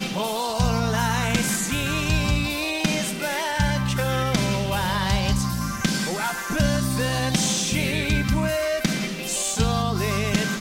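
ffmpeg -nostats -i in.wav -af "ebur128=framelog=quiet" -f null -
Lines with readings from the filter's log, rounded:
Integrated loudness:
  I:         -23.2 LUFS
  Threshold: -33.2 LUFS
Loudness range:
  LRA:         0.7 LU
  Threshold: -43.1 LUFS
  LRA low:   -23.5 LUFS
  LRA high:  -22.8 LUFS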